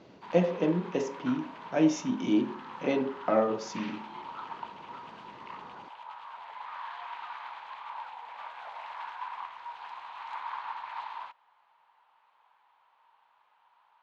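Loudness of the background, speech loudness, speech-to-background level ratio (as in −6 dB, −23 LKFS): −42.5 LKFS, −29.5 LKFS, 13.0 dB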